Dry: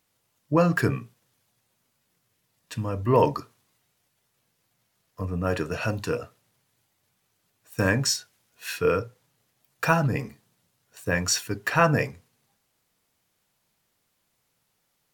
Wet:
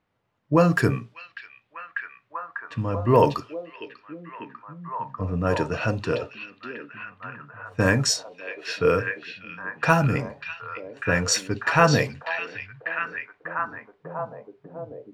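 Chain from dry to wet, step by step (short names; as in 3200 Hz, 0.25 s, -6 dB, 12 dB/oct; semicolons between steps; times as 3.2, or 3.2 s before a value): delay with a stepping band-pass 0.595 s, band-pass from 3300 Hz, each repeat -0.7 oct, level -1 dB; low-pass opened by the level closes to 1900 Hz, open at -17.5 dBFS; gain +2.5 dB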